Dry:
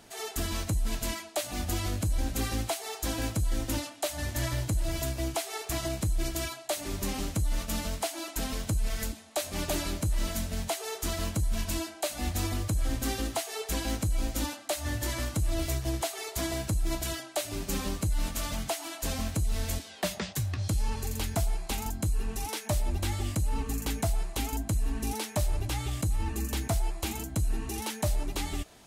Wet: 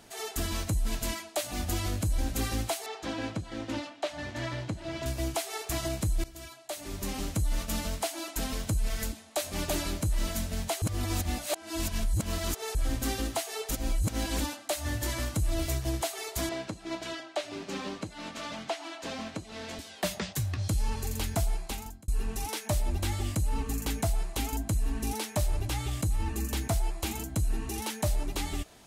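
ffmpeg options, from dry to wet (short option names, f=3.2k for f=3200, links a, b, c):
-filter_complex "[0:a]asettb=1/sr,asplit=3[a][b][c];[a]atrim=end=2.864[d];[b]atrim=start=2.86:end=5.06,asetpts=PTS-STARTPTS,afade=t=in:d=0.004:c=qsin,afade=t=out:st=2.196:d=0.004:c=qsin,highpass=140,lowpass=3.7k[e];[c]atrim=start=5.056[f];[d][e]acrossfade=d=0.004:c1=hsin:c2=qsin[g];[g][f]acrossfade=d=0.004:c1=qsin:c2=hsin,asettb=1/sr,asplit=3[h][i][j];[h]atrim=end=16.494[k];[i]atrim=start=16.49:end=19.79,asetpts=PTS-STARTPTS,afade=t=in:d=0.004:c=qsin,afade=t=out:st=3.296:d=0.004:c=qsin,highpass=230,lowpass=4.2k[l];[j]atrim=start=19.786[m];[k][l]acrossfade=d=0.004:c1=hsin:c2=qsin[n];[n][m]acrossfade=d=0.004:c1=qsin:c2=hsin,asplit=7[o][p][q][r][s][t][u];[o]atrim=end=6.24,asetpts=PTS-STARTPTS,afade=t=out:st=6.236:d=0.004:c=hsin:silence=0.125893[v];[p]atrim=start=6.24:end=10.822,asetpts=PTS-STARTPTS,afade=t=in:d=1.13:silence=0.125893[w];[q]atrim=start=10.818:end=12.752,asetpts=PTS-STARTPTS,areverse[x];[r]atrim=start=12.748:end=13.712[y];[s]atrim=start=13.708:end=14.402,asetpts=PTS-STARTPTS,areverse[z];[t]atrim=start=14.398:end=22.08,asetpts=PTS-STARTPTS,afade=t=out:st=7.152:d=0.53[aa];[u]atrim=start=22.08,asetpts=PTS-STARTPTS,afade=t=in:d=0.004:c=hsin[ab];[v][w]concat=n=2:v=0:a=1[ac];[ac][x]acrossfade=d=0.004:c1=hsin:c2=hsin[ad];[ad][y]acrossfade=d=0.004:c1=hsin:c2=hsin[ae];[ae][z]acrossfade=d=0.004:c1=hsin:c2=hsin[af];[aa][ab]concat=n=2:v=0:a=1[ag];[af][ag]acrossfade=d=0.004:c1=hsin:c2=hsin"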